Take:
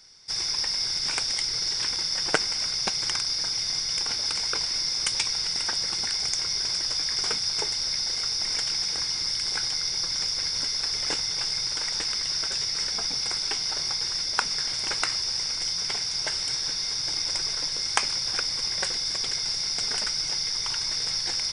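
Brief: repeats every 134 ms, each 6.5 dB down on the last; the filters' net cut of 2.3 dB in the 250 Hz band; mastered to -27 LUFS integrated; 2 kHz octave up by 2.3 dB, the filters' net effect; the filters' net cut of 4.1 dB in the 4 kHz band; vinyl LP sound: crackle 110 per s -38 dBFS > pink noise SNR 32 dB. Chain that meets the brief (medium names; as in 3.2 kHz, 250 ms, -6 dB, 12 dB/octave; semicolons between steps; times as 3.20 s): peaking EQ 250 Hz -3.5 dB; peaking EQ 2 kHz +4.5 dB; peaking EQ 4 kHz -7 dB; feedback delay 134 ms, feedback 47%, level -6.5 dB; crackle 110 per s -38 dBFS; pink noise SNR 32 dB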